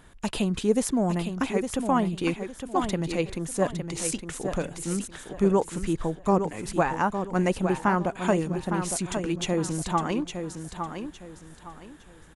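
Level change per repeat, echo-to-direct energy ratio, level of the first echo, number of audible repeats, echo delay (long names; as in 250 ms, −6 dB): −11.0 dB, −7.0 dB, −7.5 dB, 3, 860 ms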